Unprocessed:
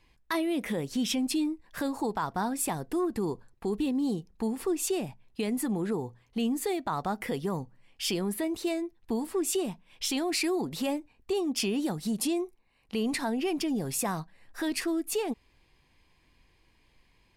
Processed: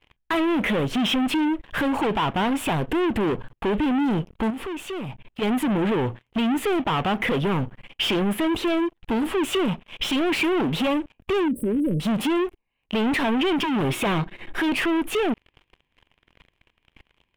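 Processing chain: waveshaping leveller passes 5; 4.50–5.42 s: compression 3:1, threshold -33 dBFS, peak gain reduction 8.5 dB; 11.48–12.00 s: brick-wall FIR band-stop 600–7900 Hz; 13.63–14.60 s: small resonant body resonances 350/2200/3700 Hz, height 11 dB; wavefolder -18.5 dBFS; FFT filter 2 kHz 0 dB, 3.1 kHz +5 dB, 4.5 kHz -14 dB

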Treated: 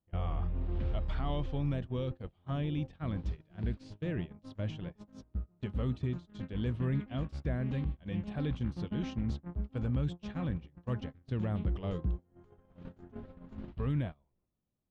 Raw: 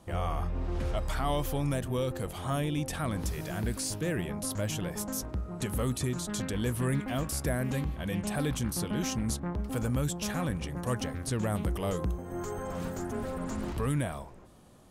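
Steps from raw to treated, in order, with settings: gate -32 dBFS, range -27 dB; four-pole ladder low-pass 4.2 kHz, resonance 35%; bass shelf 400 Hz +11.5 dB; trim -4 dB

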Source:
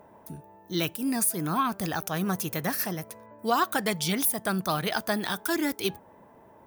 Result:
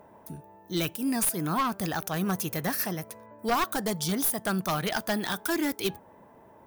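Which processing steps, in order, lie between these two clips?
one-sided wavefolder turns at -20.5 dBFS; 3.73–4.32 s: peaking EQ 2.4 kHz -9.5 dB 0.91 oct

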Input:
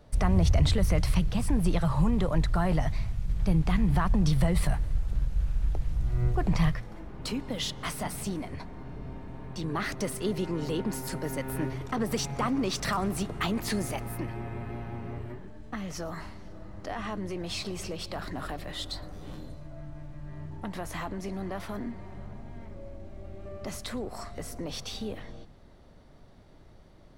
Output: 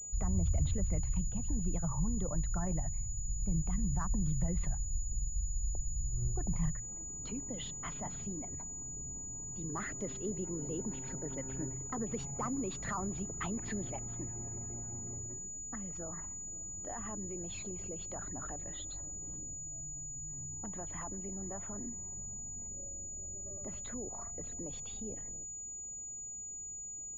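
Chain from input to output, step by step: resonances exaggerated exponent 1.5; class-D stage that switches slowly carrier 6.9 kHz; trim -8.5 dB

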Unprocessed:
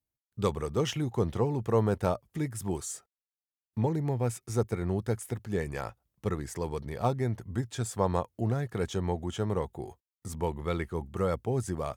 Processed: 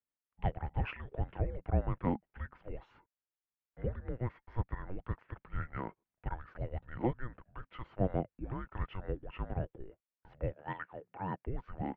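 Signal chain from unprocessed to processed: mistuned SSB -380 Hz 380–2800 Hz; 10.53–11.47 s: high-pass 210 Hz 12 dB/octave; trim -2 dB

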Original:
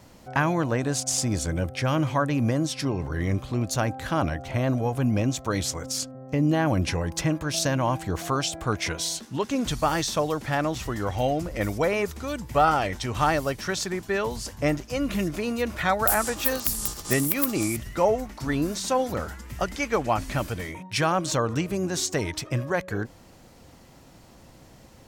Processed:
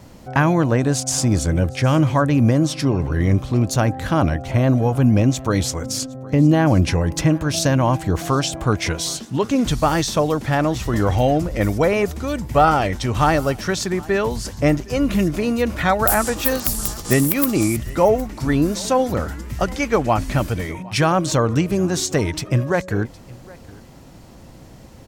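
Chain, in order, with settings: bass shelf 490 Hz +5.5 dB; delay 763 ms -23 dB; 10.93–11.38 s: level flattener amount 50%; trim +4 dB

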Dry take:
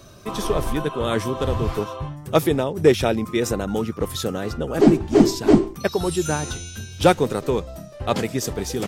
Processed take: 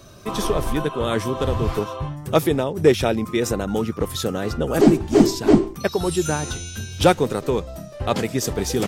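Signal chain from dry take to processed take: recorder AGC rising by 6.4 dB/s; 4.66–5.27 s: treble shelf 6.4 kHz +7 dB

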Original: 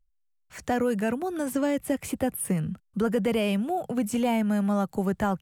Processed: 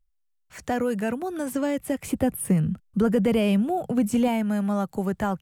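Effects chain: 2.07–4.28 s: bass shelf 360 Hz +7 dB

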